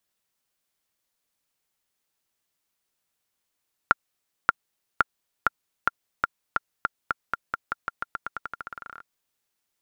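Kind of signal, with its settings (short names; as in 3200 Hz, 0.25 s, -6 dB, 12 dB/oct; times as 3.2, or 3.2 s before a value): bouncing ball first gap 0.58 s, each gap 0.89, 1390 Hz, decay 24 ms -2.5 dBFS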